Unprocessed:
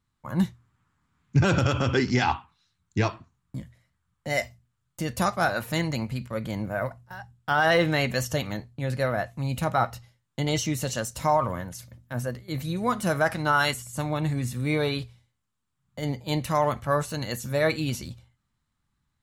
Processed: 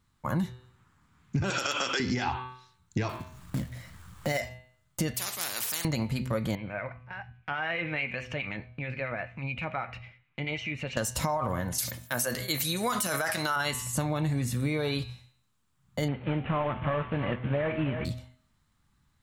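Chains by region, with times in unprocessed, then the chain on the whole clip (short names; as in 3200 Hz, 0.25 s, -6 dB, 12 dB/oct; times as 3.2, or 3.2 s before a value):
1.5–2 HPF 280 Hz + tilt +4 dB/oct
3.09–4.4 short-mantissa float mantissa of 2-bit + upward compressor, threshold -37 dBFS
5.14–5.85 differentiator + spectral compressor 4:1
6.55–10.97 synth low-pass 2400 Hz, resonance Q 9.4 + compressor 2:1, threshold -46 dBFS + harmonic tremolo 9.3 Hz, depth 50%, crossover 1400 Hz
11.78–13.56 tilt +3.5 dB/oct + sustainer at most 98 dB/s
16.08–18.05 CVSD 16 kbps + echo 0.316 s -15 dB
whole clip: de-hum 126.6 Hz, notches 34; limiter -19 dBFS; compressor, threshold -33 dBFS; gain +7 dB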